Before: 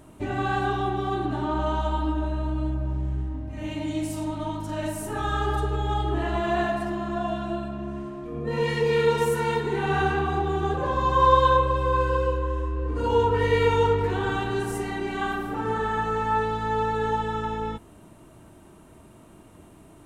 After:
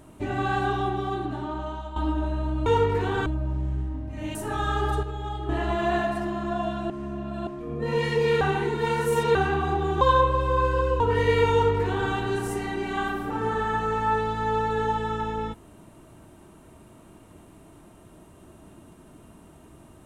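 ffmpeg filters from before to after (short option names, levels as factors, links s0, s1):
-filter_complex "[0:a]asplit=13[s0][s1][s2][s3][s4][s5][s6][s7][s8][s9][s10][s11][s12];[s0]atrim=end=1.96,asetpts=PTS-STARTPTS,afade=t=out:st=0.83:d=1.13:silence=0.237137[s13];[s1]atrim=start=1.96:end=2.662,asetpts=PTS-STARTPTS,afade=t=in:d=0.004:c=hsin:silence=0.237137[s14];[s2]atrim=start=13.748:end=14.352[s15];[s3]atrim=start=2.658:end=3.752[s16];[s4]atrim=start=4.998:end=5.682[s17];[s5]atrim=start=5.678:end=6.142,asetpts=PTS-STARTPTS,volume=0.473[s18];[s6]atrim=start=6.138:end=7.552[s19];[s7]atrim=start=7.548:end=8.122,asetpts=PTS-STARTPTS,areverse[s20];[s8]atrim=start=8.118:end=9.062[s21];[s9]atrim=start=9.058:end=10.002,asetpts=PTS-STARTPTS,areverse[s22];[s10]atrim=start=9.998:end=10.662[s23];[s11]atrim=start=11.368:end=12.362[s24];[s12]atrim=start=13.238[s25];[s13][s14]concat=n=2:v=0:a=1[s26];[s26][s15]acrossfade=d=0.004:c1=hsin:c2=hsin[s27];[s27][s16]acrossfade=d=0.004:c1=hsin:c2=hsin[s28];[s28][s17]acrossfade=d=0.004:c1=hsin:c2=hsin[s29];[s29][s18]acrossfade=d=0.004:c1=hsin:c2=hsin[s30];[s30][s19]acrossfade=d=0.004:c1=hsin:c2=hsin[s31];[s31][s20]acrossfade=d=0.004:c1=hsin:c2=hsin[s32];[s32][s21]acrossfade=d=0.004:c1=hsin:c2=hsin[s33];[s33][s22]acrossfade=d=0.004:c1=hsin:c2=hsin[s34];[s34][s23]acrossfade=d=0.004:c1=hsin:c2=hsin[s35];[s35][s24]acrossfade=d=0.004:c1=hsin:c2=hsin[s36];[s36][s25]acrossfade=d=0.004:c1=hsin:c2=hsin"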